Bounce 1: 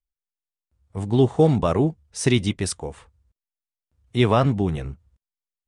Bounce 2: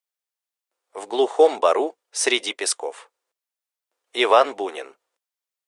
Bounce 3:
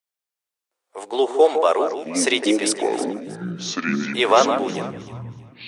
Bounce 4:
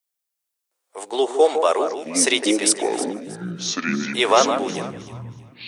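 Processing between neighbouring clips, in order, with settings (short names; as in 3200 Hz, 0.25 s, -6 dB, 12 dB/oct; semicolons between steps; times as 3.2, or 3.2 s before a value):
inverse Chebyshev high-pass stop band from 170 Hz, stop band 50 dB; gain +6 dB
echoes that change speed 0.373 s, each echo -7 st, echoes 3, each echo -6 dB; echo with dull and thin repeats by turns 0.158 s, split 2000 Hz, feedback 51%, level -7.5 dB
high shelf 5500 Hz +9.5 dB; gain -1 dB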